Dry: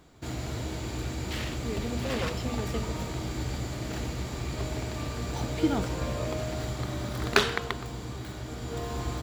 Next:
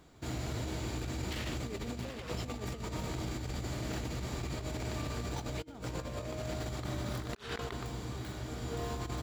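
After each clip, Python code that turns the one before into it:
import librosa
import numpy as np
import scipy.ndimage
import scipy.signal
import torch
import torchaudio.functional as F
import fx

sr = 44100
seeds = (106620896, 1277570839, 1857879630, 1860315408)

y = fx.over_compress(x, sr, threshold_db=-33.0, ratio=-0.5)
y = F.gain(torch.from_numpy(y), -4.5).numpy()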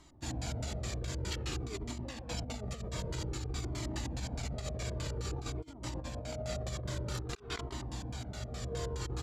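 y = fx.high_shelf(x, sr, hz=4500.0, db=9.5)
y = fx.filter_lfo_lowpass(y, sr, shape='square', hz=4.8, low_hz=590.0, high_hz=7500.0, q=0.95)
y = fx.comb_cascade(y, sr, direction='falling', hz=0.52)
y = F.gain(torch.from_numpy(y), 3.0).numpy()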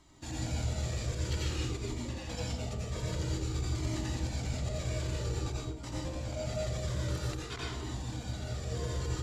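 y = fx.rev_plate(x, sr, seeds[0], rt60_s=0.56, hf_ratio=0.95, predelay_ms=75, drr_db=-3.5)
y = F.gain(torch.from_numpy(y), -3.0).numpy()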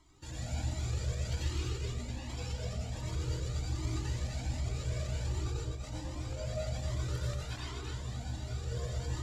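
y = x + 10.0 ** (-4.5 / 20.0) * np.pad(x, (int(250 * sr / 1000.0), 0))[:len(x)]
y = fx.comb_cascade(y, sr, direction='rising', hz=1.3)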